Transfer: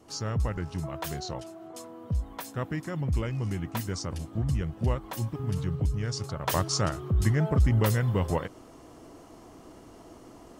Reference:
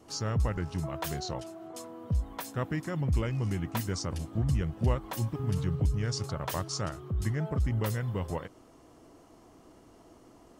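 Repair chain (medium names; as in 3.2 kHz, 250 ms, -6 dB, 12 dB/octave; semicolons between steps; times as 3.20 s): trim 0 dB, from 6.47 s -6.5 dB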